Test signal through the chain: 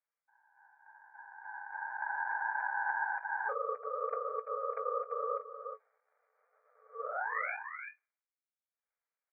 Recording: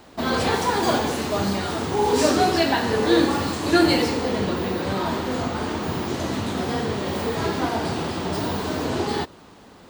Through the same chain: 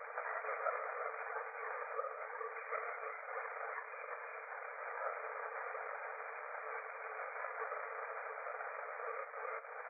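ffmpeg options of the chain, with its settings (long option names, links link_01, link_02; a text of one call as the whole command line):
ffmpeg -i in.wav -filter_complex "[0:a]asplit=2[link_01][link_02];[link_02]adelay=340,highpass=300,lowpass=3400,asoftclip=type=hard:threshold=-18.5dB,volume=-8dB[link_03];[link_01][link_03]amix=inputs=2:normalize=0,acompressor=threshold=-40dB:ratio=16,afftfilt=real='hypot(re,im)*cos(2*PI*random(0))':imag='hypot(re,im)*sin(2*PI*random(1))':win_size=512:overlap=0.75,afftfilt=real='re*between(b*sr/4096,780,2100)':imag='im*between(b*sr/4096,780,2100)':win_size=4096:overlap=0.75,asplit=2[link_04][link_05];[link_05]adelay=19,volume=-12.5dB[link_06];[link_04][link_06]amix=inputs=2:normalize=0,aeval=exprs='val(0)*sin(2*PI*350*n/s)':channel_layout=same,volume=15.5dB" out.wav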